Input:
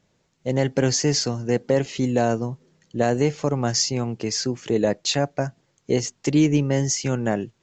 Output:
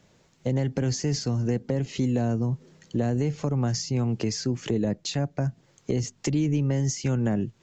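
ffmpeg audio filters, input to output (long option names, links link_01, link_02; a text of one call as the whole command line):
ffmpeg -i in.wav -filter_complex "[0:a]acrossover=split=250[link_01][link_02];[link_01]alimiter=level_in=3dB:limit=-24dB:level=0:latency=1,volume=-3dB[link_03];[link_02]acompressor=threshold=-37dB:ratio=8[link_04];[link_03][link_04]amix=inputs=2:normalize=0,volume=6.5dB" out.wav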